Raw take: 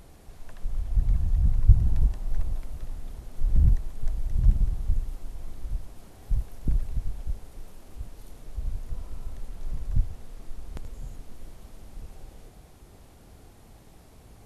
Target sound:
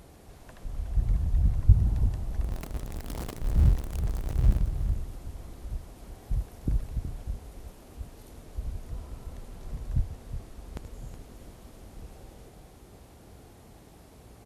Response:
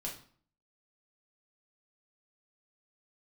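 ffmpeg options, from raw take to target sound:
-filter_complex "[0:a]asettb=1/sr,asplit=3[a][b][c];[a]atrim=end=2.444[d];[b]atrim=start=2.44:end=4.62,asetpts=PTS-STARTPTS,afade=t=in:d=0.004:c=qsin,afade=t=out:st=2.176:d=0.004:c=qsin,aeval=exprs='val(0)+0.5*0.0299*sgn(val(0))':c=same[e];[c]atrim=start=4.616[f];[d][e]acrossfade=d=0.004:c1=hsin:c2=qsin[g];[g][f]acrossfade=d=0.004:c1=qsin:c2=hsin,highpass=41,equalizer=f=410:t=o:w=2.2:g=2.5,aecho=1:1:369:0.282"

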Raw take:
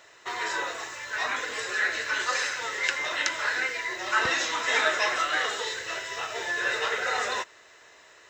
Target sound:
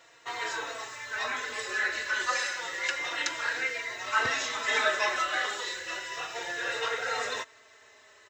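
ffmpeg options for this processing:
-filter_complex "[0:a]asplit=2[a][b];[b]adelay=3.8,afreqshift=-0.3[c];[a][c]amix=inputs=2:normalize=1"

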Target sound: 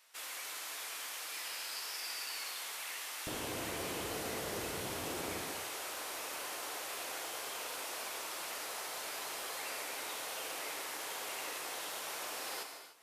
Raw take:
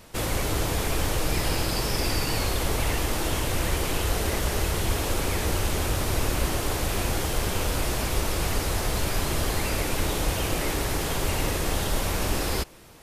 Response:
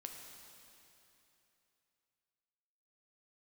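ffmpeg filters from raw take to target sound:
-filter_complex "[0:a]asetnsamples=n=441:p=0,asendcmd='3.27 highpass f 170;5.41 highpass f 680',highpass=1.3k[a];[1:a]atrim=start_sample=2205,afade=t=out:st=0.36:d=0.01,atrim=end_sample=16317[b];[a][b]afir=irnorm=-1:irlink=0,volume=-6dB"

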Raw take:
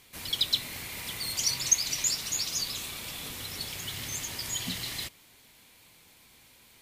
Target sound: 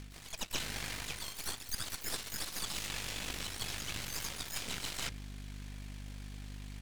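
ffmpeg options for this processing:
-filter_complex "[0:a]lowpass=8.6k,bandreject=f=60:t=h:w=6,bandreject=f=120:t=h:w=6,bandreject=f=180:t=h:w=6,bandreject=f=240:t=h:w=6,bandreject=f=300:t=h:w=6,bandreject=f=360:t=h:w=6,bandreject=f=420:t=h:w=6,bandreject=f=480:t=h:w=6,bandreject=f=540:t=h:w=6,bandreject=f=600:t=h:w=6,asplit=4[a][b][c][d];[b]asetrate=33038,aresample=44100,atempo=1.33484,volume=-1dB[e];[c]asetrate=58866,aresample=44100,atempo=0.749154,volume=-9dB[f];[d]asetrate=88200,aresample=44100,atempo=0.5,volume=-6dB[g];[a][e][f][g]amix=inputs=4:normalize=0,aeval=exprs='val(0)+0.00708*(sin(2*PI*50*n/s)+sin(2*PI*2*50*n/s)/2+sin(2*PI*3*50*n/s)/3+sin(2*PI*4*50*n/s)/4+sin(2*PI*5*50*n/s)/5)':c=same,aeval=exprs='0.422*(cos(1*acos(clip(val(0)/0.422,-1,1)))-cos(1*PI/2))+0.188*(cos(6*acos(clip(val(0)/0.422,-1,1)))-cos(6*PI/2))+0.0211*(cos(7*acos(clip(val(0)/0.422,-1,1)))-cos(7*PI/2))':c=same,areverse,acompressor=threshold=-36dB:ratio=20,areverse,volume=2.5dB"

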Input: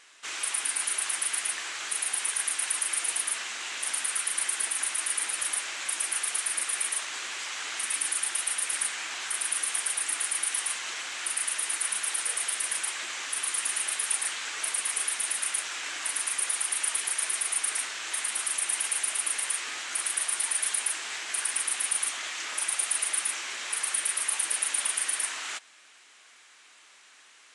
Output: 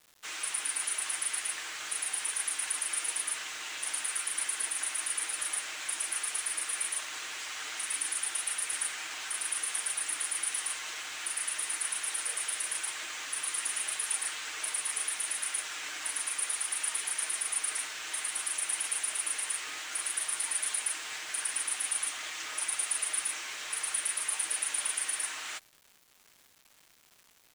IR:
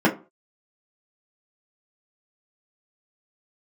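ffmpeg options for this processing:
-af "aecho=1:1:6.5:0.39,acrusher=bits=7:mix=0:aa=0.000001,volume=-4.5dB"

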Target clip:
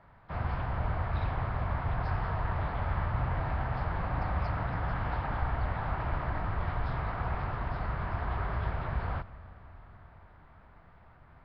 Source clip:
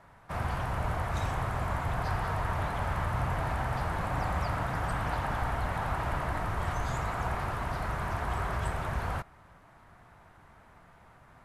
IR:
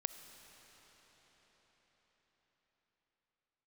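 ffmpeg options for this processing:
-filter_complex "[0:a]asplit=2[a][b];[1:a]atrim=start_sample=2205,lowpass=5.4k,lowshelf=f=160:g=11.5[c];[b][c]afir=irnorm=-1:irlink=0,volume=-4.5dB[d];[a][d]amix=inputs=2:normalize=0,volume=-6.5dB" -ar 11025 -c:a nellymoser

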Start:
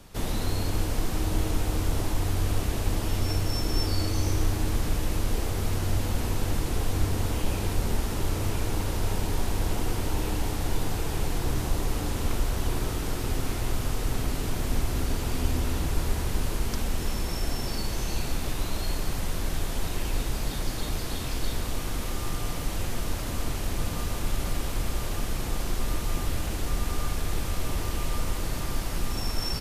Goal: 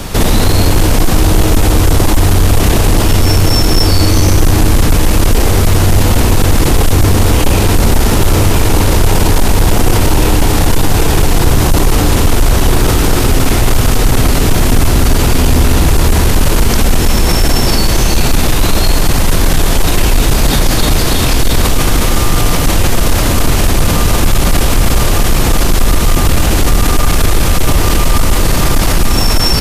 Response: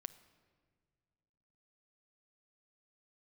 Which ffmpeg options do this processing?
-filter_complex "[0:a]acrossover=split=6800[a][b];[a]asoftclip=type=hard:threshold=-22.5dB[c];[c][b]amix=inputs=2:normalize=0,alimiter=level_in=29dB:limit=-1dB:release=50:level=0:latency=1,volume=-1dB"

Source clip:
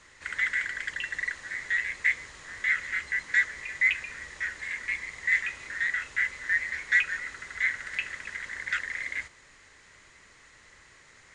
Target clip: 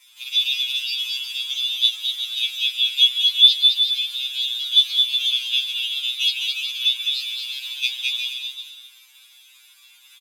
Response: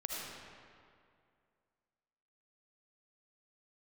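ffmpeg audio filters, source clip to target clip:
-af "highpass=1.1k,aecho=1:1:1.4:0.66,adynamicequalizer=threshold=0.0158:dfrequency=2100:dqfactor=1.8:tfrequency=2100:tqfactor=1.8:attack=5:release=100:ratio=0.375:range=1.5:mode=boostabove:tftype=bell,acontrast=32,asetrate=75411,aresample=44100,aecho=1:1:140|238|306.6|354.6|388.2:0.631|0.398|0.251|0.158|0.1,atempo=0.65,afftfilt=real='re*2.45*eq(mod(b,6),0)':imag='im*2.45*eq(mod(b,6),0)':win_size=2048:overlap=0.75"

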